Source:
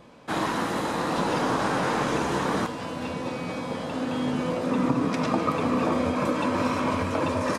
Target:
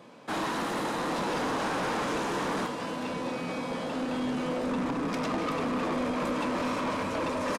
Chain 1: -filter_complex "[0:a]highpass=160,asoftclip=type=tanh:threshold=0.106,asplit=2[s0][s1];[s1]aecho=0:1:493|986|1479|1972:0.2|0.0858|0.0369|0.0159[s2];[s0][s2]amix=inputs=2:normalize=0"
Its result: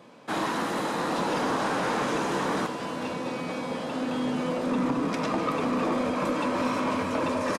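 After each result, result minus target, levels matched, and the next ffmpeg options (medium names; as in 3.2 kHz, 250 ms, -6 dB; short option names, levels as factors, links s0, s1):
echo 215 ms late; saturation: distortion -7 dB
-filter_complex "[0:a]highpass=160,asoftclip=type=tanh:threshold=0.106,asplit=2[s0][s1];[s1]aecho=0:1:278|556|834|1112:0.2|0.0858|0.0369|0.0159[s2];[s0][s2]amix=inputs=2:normalize=0"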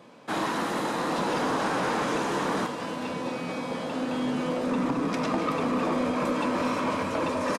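saturation: distortion -7 dB
-filter_complex "[0:a]highpass=160,asoftclip=type=tanh:threshold=0.0473,asplit=2[s0][s1];[s1]aecho=0:1:278|556|834|1112:0.2|0.0858|0.0369|0.0159[s2];[s0][s2]amix=inputs=2:normalize=0"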